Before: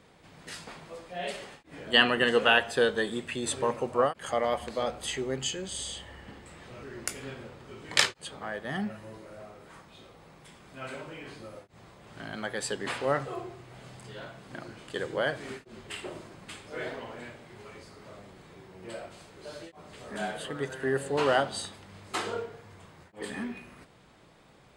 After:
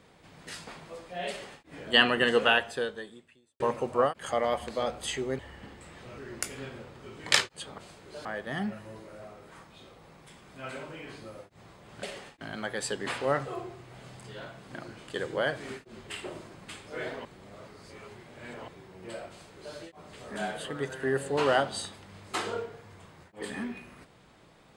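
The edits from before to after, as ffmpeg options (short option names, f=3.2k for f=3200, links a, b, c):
-filter_complex "[0:a]asplit=9[a][b][c][d][e][f][g][h][i];[a]atrim=end=3.6,asetpts=PTS-STARTPTS,afade=t=out:st=2.43:d=1.17:c=qua[j];[b]atrim=start=3.6:end=5.392,asetpts=PTS-STARTPTS,afade=t=in:d=0.004:c=hsin[k];[c]atrim=start=6.038:end=8.432[l];[d]atrim=start=19.088:end=19.562[m];[e]atrim=start=8.428:end=12.212[n];[f]atrim=start=1.288:end=1.672[o];[g]atrim=start=12.208:end=17.052[p];[h]atrim=start=17.048:end=18.482,asetpts=PTS-STARTPTS,areverse[q];[i]atrim=start=18.478[r];[j][k]concat=n=2:v=0:a=1[s];[s][l]acrossfade=d=0.004:c1=hsin:c2=hsin[t];[t][m]acrossfade=d=0.004:c1=hsin:c2=hsin[u];[u][n]acrossfade=d=0.004:c1=hsin:c2=hsin[v];[v][o]acrossfade=d=0.004:c1=hsin:c2=hsin[w];[w][p]acrossfade=d=0.004:c1=hsin:c2=hsin[x];[x][q]acrossfade=d=0.004:c1=hsin:c2=hsin[y];[y][r]acrossfade=d=0.004:c1=hsin:c2=hsin"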